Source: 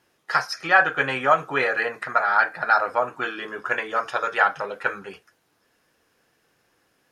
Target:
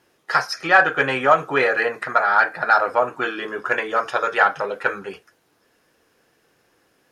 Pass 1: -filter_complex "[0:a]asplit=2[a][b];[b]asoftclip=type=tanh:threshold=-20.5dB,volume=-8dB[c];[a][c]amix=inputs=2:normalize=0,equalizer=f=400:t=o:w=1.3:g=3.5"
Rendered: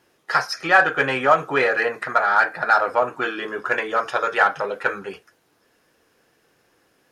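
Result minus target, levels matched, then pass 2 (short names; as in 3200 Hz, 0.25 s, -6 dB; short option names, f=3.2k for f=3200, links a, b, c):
soft clip: distortion +6 dB
-filter_complex "[0:a]asplit=2[a][b];[b]asoftclip=type=tanh:threshold=-13dB,volume=-8dB[c];[a][c]amix=inputs=2:normalize=0,equalizer=f=400:t=o:w=1.3:g=3.5"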